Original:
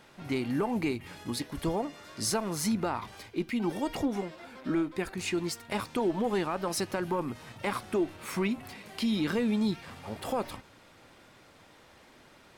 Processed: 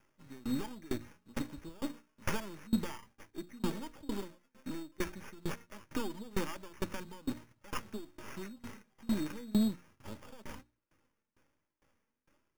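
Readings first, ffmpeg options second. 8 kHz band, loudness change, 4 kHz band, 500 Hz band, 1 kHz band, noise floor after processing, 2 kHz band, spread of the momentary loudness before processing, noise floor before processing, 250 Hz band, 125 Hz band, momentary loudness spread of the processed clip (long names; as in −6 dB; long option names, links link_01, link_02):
−12.0 dB, −7.5 dB, −9.5 dB, −12.0 dB, −11.5 dB, −84 dBFS, −8.5 dB, 9 LU, −57 dBFS, −6.5 dB, −6.5 dB, 15 LU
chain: -filter_complex "[0:a]agate=range=-13dB:threshold=-45dB:ratio=16:detection=peak,bandreject=frequency=59.28:width_type=h:width=4,bandreject=frequency=118.56:width_type=h:width=4,bandreject=frequency=177.84:width_type=h:width=4,bandreject=frequency=237.12:width_type=h:width=4,bandreject=frequency=296.4:width_type=h:width=4,bandreject=frequency=355.68:width_type=h:width=4,acrossover=split=280[link_01][link_02];[link_02]aeval=exprs='max(val(0),0)':channel_layout=same[link_03];[link_01][link_03]amix=inputs=2:normalize=0,flanger=delay=2.9:depth=1.6:regen=50:speed=1.2:shape=sinusoidal,asplit=2[link_04][link_05];[link_05]asoftclip=type=hard:threshold=-31dB,volume=-4dB[link_06];[link_04][link_06]amix=inputs=2:normalize=0,acrusher=samples=11:mix=1:aa=0.000001,asuperstop=centerf=710:order=4:qfactor=6.5,aeval=exprs='val(0)*pow(10,-26*if(lt(mod(2.2*n/s,1),2*abs(2.2)/1000),1-mod(2.2*n/s,1)/(2*abs(2.2)/1000),(mod(2.2*n/s,1)-2*abs(2.2)/1000)/(1-2*abs(2.2)/1000))/20)':channel_layout=same,volume=3dB"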